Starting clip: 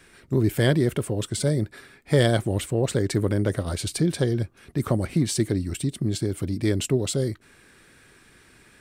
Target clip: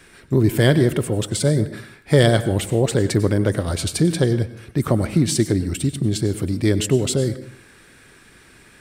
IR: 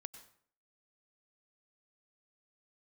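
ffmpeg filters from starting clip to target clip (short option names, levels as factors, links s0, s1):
-filter_complex "[0:a]asplit=2[s0][s1];[1:a]atrim=start_sample=2205[s2];[s1][s2]afir=irnorm=-1:irlink=0,volume=4.22[s3];[s0][s3]amix=inputs=2:normalize=0,volume=0.531"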